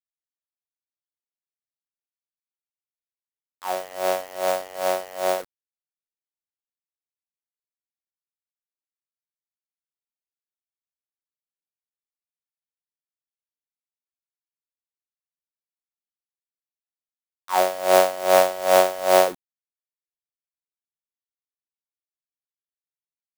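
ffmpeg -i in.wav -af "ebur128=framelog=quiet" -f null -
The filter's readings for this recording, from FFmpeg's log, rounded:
Integrated loudness:
  I:         -21.4 LUFS
  Threshold: -31.8 LUFS
Loudness range:
  LRA:        13.8 LU
  Threshold: -45.1 LUFS
  LRA low:   -34.5 LUFS
  LRA high:  -20.7 LUFS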